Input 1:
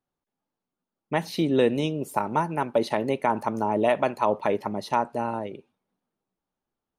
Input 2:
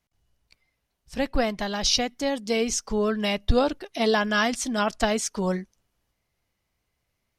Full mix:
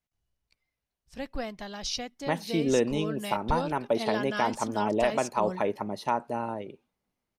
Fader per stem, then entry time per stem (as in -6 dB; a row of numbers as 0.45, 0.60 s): -3.5, -10.5 dB; 1.15, 0.00 s